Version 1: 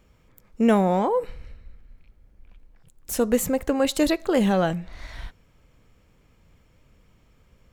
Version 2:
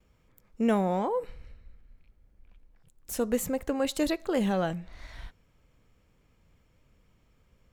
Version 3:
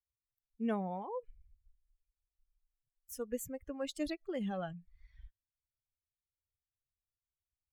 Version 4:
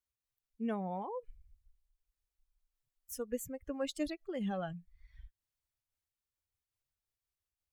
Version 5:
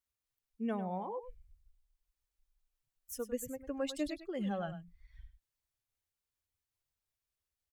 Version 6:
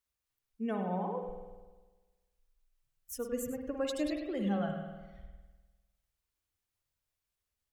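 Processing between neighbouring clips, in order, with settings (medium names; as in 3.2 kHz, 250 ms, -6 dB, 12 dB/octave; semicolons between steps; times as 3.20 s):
gate with hold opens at -53 dBFS; trim -6.5 dB
expander on every frequency bin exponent 2; trim -7.5 dB
random flutter of the level, depth 55%; trim +3.5 dB
delay 100 ms -12 dB
spring tank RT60 1.3 s, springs 50 ms, chirp 65 ms, DRR 4.5 dB; trim +1.5 dB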